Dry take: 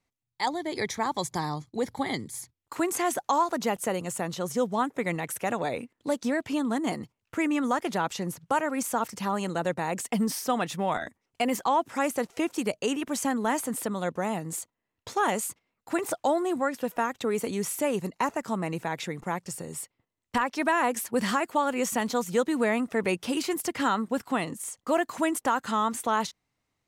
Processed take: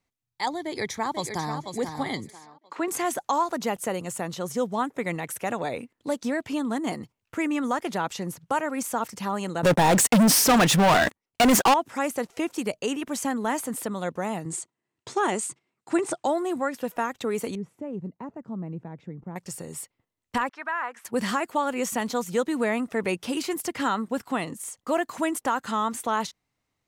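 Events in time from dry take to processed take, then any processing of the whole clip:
0.64–1.59 s: echo throw 490 ms, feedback 30%, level -7 dB
2.30–2.88 s: band-pass 270–3900 Hz
9.63–11.74 s: waveshaping leveller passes 5
14.45–16.27 s: cabinet simulation 110–9200 Hz, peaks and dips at 140 Hz +7 dB, 360 Hz +8 dB, 520 Hz -4 dB, 8.4 kHz +6 dB
17.55–19.36 s: band-pass filter 140 Hz, Q 0.84
20.49–21.05 s: band-pass filter 1.4 kHz, Q 2

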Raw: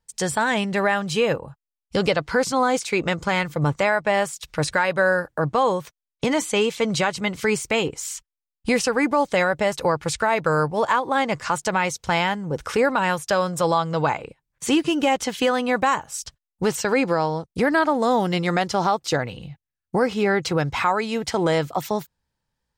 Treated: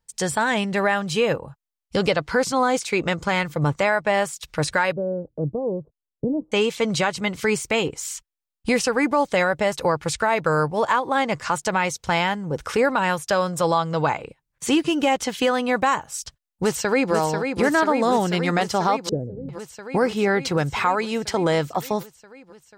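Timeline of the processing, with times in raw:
4.92–6.52 s: inverse Chebyshev low-pass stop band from 2.2 kHz, stop band 70 dB
16.16–17.13 s: echo throw 490 ms, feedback 80%, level -6 dB
19.09–19.49 s: inverse Chebyshev low-pass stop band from 1 kHz

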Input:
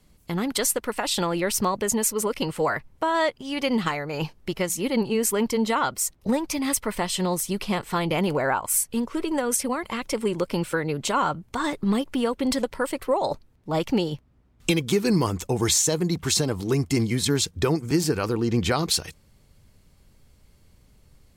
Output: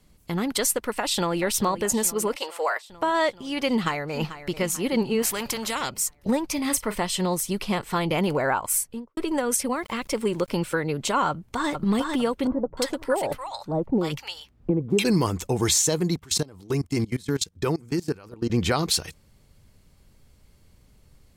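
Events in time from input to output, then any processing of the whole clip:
0.93–1.40 s: echo throw 430 ms, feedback 70%, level -13.5 dB
2.36–2.90 s: high-pass 490 Hz 24 dB/octave
3.71–4.53 s: echo throw 440 ms, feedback 50%, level -13 dB
5.22–5.90 s: spectrum-flattening compressor 2:1
6.53–6.96 s: doubling 35 ms -13 dB
8.71–9.17 s: studio fade out
9.75–10.50 s: small samples zeroed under -48 dBFS
11.29–11.70 s: echo throw 450 ms, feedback 35%, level -4 dB
12.47–15.05 s: bands offset in time lows, highs 300 ms, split 950 Hz
16.16–18.50 s: level held to a coarse grid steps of 23 dB

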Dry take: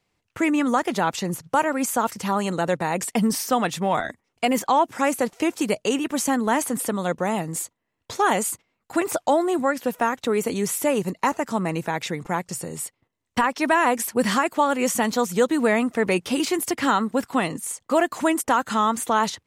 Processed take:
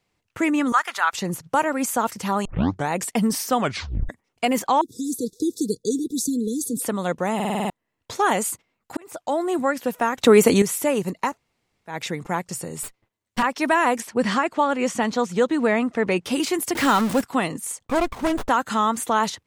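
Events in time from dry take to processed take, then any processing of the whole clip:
0.72–1.13 s: resonant high-pass 1.3 kHz, resonance Q 2.3
2.45 s: tape start 0.44 s
3.59 s: tape stop 0.50 s
4.81–6.82 s: brick-wall FIR band-stop 500–3400 Hz
7.35 s: stutter in place 0.05 s, 7 plays
8.97–9.57 s: fade in
10.18–10.62 s: gain +9.5 dB
11.30–11.93 s: room tone, crossfade 0.16 s
12.83–13.43 s: comb filter that takes the minimum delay 9.3 ms
14.00–16.25 s: distance through air 73 m
16.75–17.21 s: jump at every zero crossing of -23 dBFS
17.85–18.49 s: sliding maximum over 17 samples

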